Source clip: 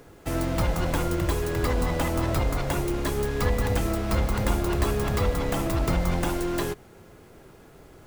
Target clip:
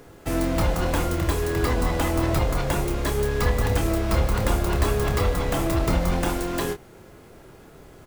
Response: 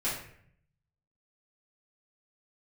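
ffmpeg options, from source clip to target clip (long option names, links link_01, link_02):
-filter_complex "[0:a]asplit=2[link_01][link_02];[link_02]adelay=27,volume=-7.5dB[link_03];[link_01][link_03]amix=inputs=2:normalize=0,volume=2dB"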